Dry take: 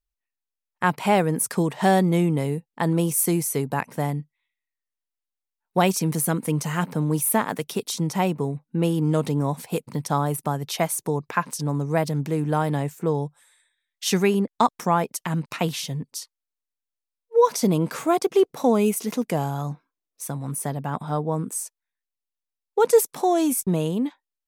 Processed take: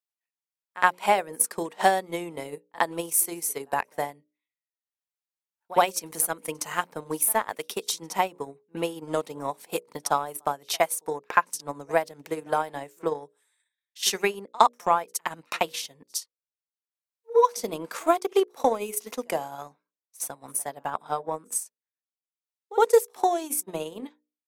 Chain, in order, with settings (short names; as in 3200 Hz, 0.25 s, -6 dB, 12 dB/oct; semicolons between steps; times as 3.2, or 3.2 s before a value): HPF 470 Hz 12 dB/oct; notches 60/120/180/240/300/360/420/480/540/600 Hz; pre-echo 64 ms -19.5 dB; transient shaper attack +8 dB, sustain -9 dB; gain -3.5 dB